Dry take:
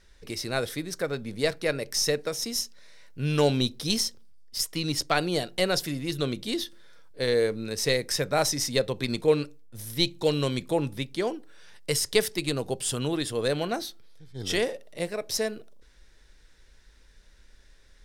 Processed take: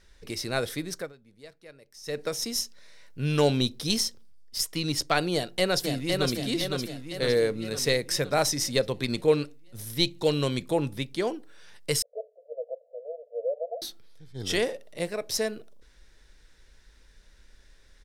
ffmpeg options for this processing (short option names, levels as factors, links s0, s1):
-filter_complex "[0:a]asplit=2[s0][s1];[s1]afade=t=in:st=5.33:d=0.01,afade=t=out:st=6.35:d=0.01,aecho=0:1:510|1020|1530|2040|2550|3060|3570|4080:0.668344|0.367589|0.202174|0.111196|0.0611576|0.0336367|0.0185002|0.0101751[s2];[s0][s2]amix=inputs=2:normalize=0,asettb=1/sr,asplit=3[s3][s4][s5];[s3]atrim=end=12.024[s6];[s4]atrim=start=12.02:end=13.82,asetpts=PTS-STARTPTS,afade=t=in:d=0.004:c=qsin,afade=t=out:st=1.796:d=0.004:c=qsin,asuperpass=centerf=570:order=12:qfactor=2.5[s7];[s5]atrim=start=13.816[s8];[s6][s7]acrossfade=d=0.004:c1=hsin:c2=qsin[s9];[s9][s8]acrossfade=d=0.004:c1=qsin:c2=hsin,asplit=3[s10][s11][s12];[s10]atrim=end=1.13,asetpts=PTS-STARTPTS,afade=t=out:st=0.92:d=0.21:silence=0.0794328[s13];[s11]atrim=start=1.13:end=2.03,asetpts=PTS-STARTPTS,volume=0.0794[s14];[s12]atrim=start=2.03,asetpts=PTS-STARTPTS,afade=t=in:d=0.21:silence=0.0794328[s15];[s13][s14][s15]concat=n=3:v=0:a=1"